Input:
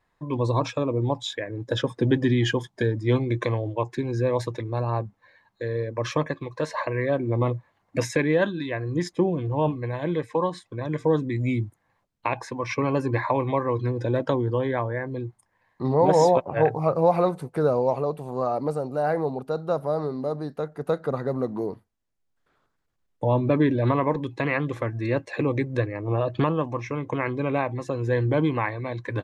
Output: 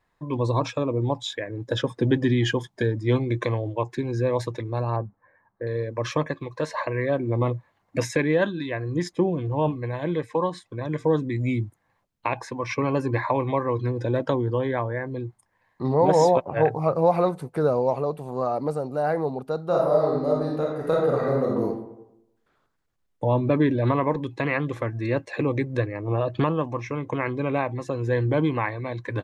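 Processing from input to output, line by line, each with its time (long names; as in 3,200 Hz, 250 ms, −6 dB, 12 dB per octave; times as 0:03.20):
0:04.96–0:05.67: low-pass filter 1,600 Hz 24 dB per octave
0:19.68–0:21.64: thrown reverb, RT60 0.86 s, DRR −3 dB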